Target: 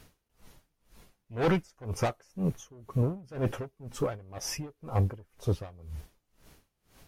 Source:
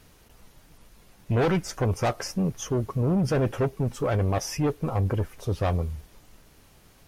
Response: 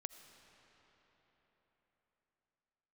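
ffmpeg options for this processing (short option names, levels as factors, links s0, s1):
-filter_complex "[0:a]asettb=1/sr,asplit=3[s0][s1][s2];[s0]atrim=end=2.074[s3];[s1]atrim=start=2.07:end=3.24,asetpts=PTS-STARTPTS,afade=t=in:d=0.004:c=qsin,afade=t=out:st=1.166:d=0.004:c=qsin,bandreject=f=5000:w=8.6[s4];[s2]atrim=start=3.236[s5];[s3][s4]acrossfade=d=0.004:c1=hsin:c2=qsin[s6];[s6][s5]acrossfade=d=0.004:c1=qsin:c2=hsin,aeval=exprs='val(0)*pow(10,-27*(0.5-0.5*cos(2*PI*2*n/s))/20)':c=same"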